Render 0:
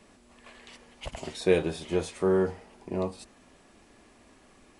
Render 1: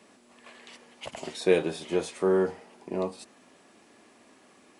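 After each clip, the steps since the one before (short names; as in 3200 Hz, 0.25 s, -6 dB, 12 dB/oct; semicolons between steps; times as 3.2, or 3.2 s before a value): HPF 190 Hz 12 dB/oct; gain +1 dB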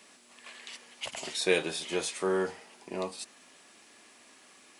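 tilt shelf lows -7 dB, about 1200 Hz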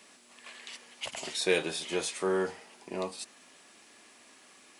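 soft clip -13 dBFS, distortion -25 dB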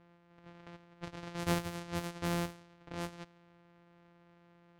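sample sorter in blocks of 256 samples; low-pass opened by the level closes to 2200 Hz, open at -27.5 dBFS; gain -5.5 dB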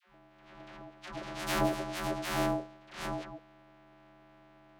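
dispersion lows, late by 0.146 s, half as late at 640 Hz; ring modulator 480 Hz; gain +7 dB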